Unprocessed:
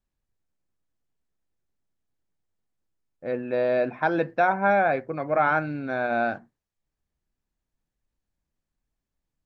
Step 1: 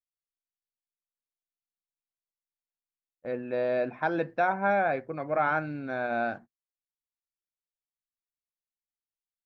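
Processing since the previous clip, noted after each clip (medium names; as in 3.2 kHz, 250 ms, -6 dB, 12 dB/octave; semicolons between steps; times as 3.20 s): gate -41 dBFS, range -28 dB; trim -4.5 dB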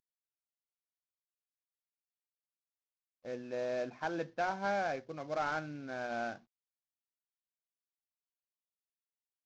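CVSD coder 32 kbps; trim -8 dB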